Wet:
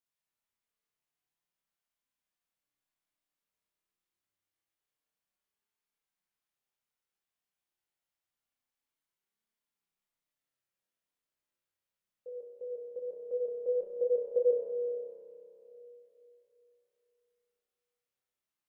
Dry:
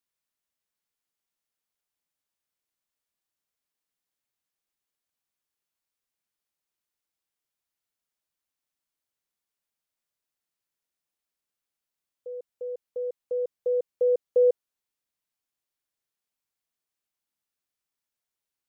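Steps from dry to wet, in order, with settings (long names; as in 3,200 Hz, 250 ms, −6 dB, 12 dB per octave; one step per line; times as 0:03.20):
spring reverb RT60 3.2 s, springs 31 ms, chirp 65 ms, DRR −2 dB
chorus effect 0.26 Hz, delay 19.5 ms, depth 7.1 ms
level −2.5 dB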